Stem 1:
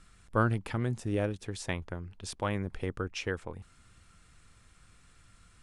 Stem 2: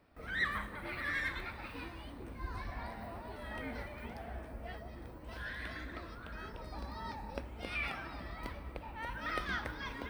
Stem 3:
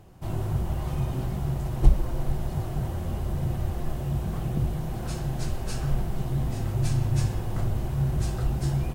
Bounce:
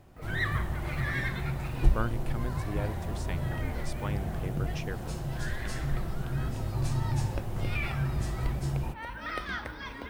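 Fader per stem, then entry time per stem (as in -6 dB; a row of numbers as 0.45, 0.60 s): -5.5, +2.0, -5.0 dB; 1.60, 0.00, 0.00 s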